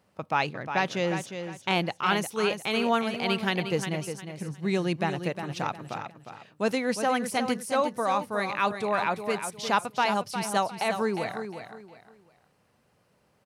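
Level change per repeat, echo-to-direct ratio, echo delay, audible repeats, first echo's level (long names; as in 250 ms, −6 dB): −11.0 dB, −8.0 dB, 357 ms, 3, −8.5 dB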